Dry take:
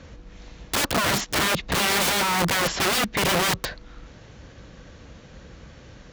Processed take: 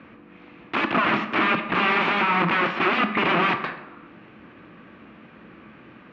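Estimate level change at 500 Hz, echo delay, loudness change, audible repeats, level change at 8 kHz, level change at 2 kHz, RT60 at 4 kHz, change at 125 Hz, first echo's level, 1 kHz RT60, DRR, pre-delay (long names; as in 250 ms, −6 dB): 0.0 dB, no echo audible, +0.5 dB, no echo audible, below −30 dB, +2.5 dB, 0.60 s, −2.5 dB, no echo audible, 1.0 s, 7.0 dB, 12 ms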